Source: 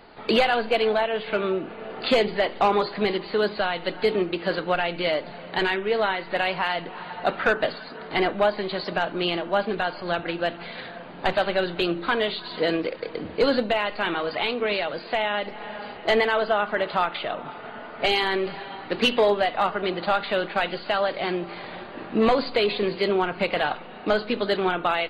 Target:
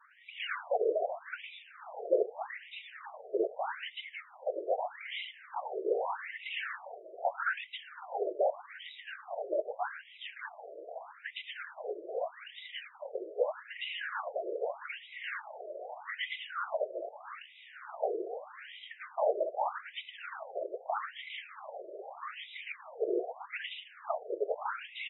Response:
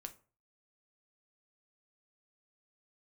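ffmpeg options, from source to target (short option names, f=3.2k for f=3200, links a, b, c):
-filter_complex "[0:a]afftfilt=real='hypot(re,im)*cos(2*PI*random(0))':imag='hypot(re,im)*sin(2*PI*random(1))':win_size=512:overlap=0.75,acrossover=split=2000[a][b];[b]adelay=110[c];[a][c]amix=inputs=2:normalize=0,asplit=2[d][e];[e]acompressor=threshold=-37dB:ratio=8,volume=3dB[f];[d][f]amix=inputs=2:normalize=0,afftfilt=real='re*between(b*sr/1024,470*pow(2800/470,0.5+0.5*sin(2*PI*0.81*pts/sr))/1.41,470*pow(2800/470,0.5+0.5*sin(2*PI*0.81*pts/sr))*1.41)':imag='im*between(b*sr/1024,470*pow(2800/470,0.5+0.5*sin(2*PI*0.81*pts/sr))/1.41,470*pow(2800/470,0.5+0.5*sin(2*PI*0.81*pts/sr))*1.41)':win_size=1024:overlap=0.75,volume=-3.5dB"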